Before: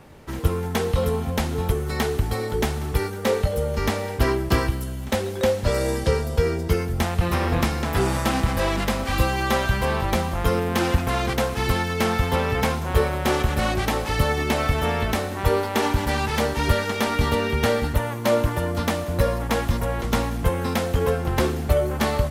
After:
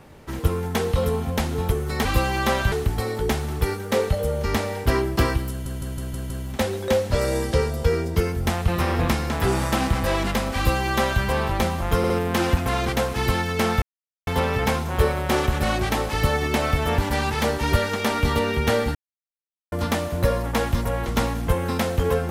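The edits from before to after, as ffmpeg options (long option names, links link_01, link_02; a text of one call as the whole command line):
ffmpeg -i in.wav -filter_complex "[0:a]asplit=14[link_01][link_02][link_03][link_04][link_05][link_06][link_07][link_08][link_09][link_10][link_11][link_12][link_13][link_14];[link_01]atrim=end=2.052[link_15];[link_02]atrim=start=9.088:end=9.762[link_16];[link_03]atrim=start=2.048:end=4.992[link_17];[link_04]atrim=start=4.828:end=4.992[link_18];[link_05]atrim=start=4.828:end=4.992[link_19];[link_06]atrim=start=4.828:end=4.992[link_20];[link_07]atrim=start=4.828:end=4.992[link_21];[link_08]atrim=start=4.828:end=10.572[link_22];[link_09]atrim=start=10.508:end=10.572[link_23];[link_10]atrim=start=10.508:end=12.23,asetpts=PTS-STARTPTS,afade=type=out:start_time=1.718:duration=0.004:curve=hsin,apad=pad_dur=0.45[link_24];[link_11]atrim=start=12.23:end=14.942,asetpts=PTS-STARTPTS,afade=type=in:duration=0.004:curve=hsin[link_25];[link_12]atrim=start=15.938:end=17.91,asetpts=PTS-STARTPTS,afade=type=out:start_time=1.968:duration=0.004:curve=hsin[link_26];[link_13]atrim=start=17.91:end=18.68,asetpts=PTS-STARTPTS,volume=0[link_27];[link_14]atrim=start=18.68,asetpts=PTS-STARTPTS,afade=type=in:duration=0.004:curve=hsin[link_28];[link_15][link_16]acrossfade=duration=0.004:curve1=hsin:curve2=hsin[link_29];[link_29][link_17]acrossfade=duration=0.004:curve1=hsin:curve2=hsin[link_30];[link_30][link_18]acrossfade=duration=0.004:curve1=hsin:curve2=hsin[link_31];[link_31][link_19]acrossfade=duration=0.004:curve1=hsin:curve2=hsin[link_32];[link_32][link_20]acrossfade=duration=0.004:curve1=hsin:curve2=hsin[link_33];[link_33][link_21]acrossfade=duration=0.004:curve1=hsin:curve2=hsin[link_34];[link_34][link_22]acrossfade=duration=0.004:curve1=hsin:curve2=hsin[link_35];[link_35][link_23]acrossfade=duration=0.004:curve1=hsin:curve2=hsin[link_36];[link_24][link_25]concat=n=2:v=0:a=1[link_37];[link_36][link_37]acrossfade=duration=0.004:curve1=hsin:curve2=hsin[link_38];[link_26][link_27][link_28]concat=n=3:v=0:a=1[link_39];[link_38][link_39]acrossfade=duration=0.004:curve1=hsin:curve2=hsin" out.wav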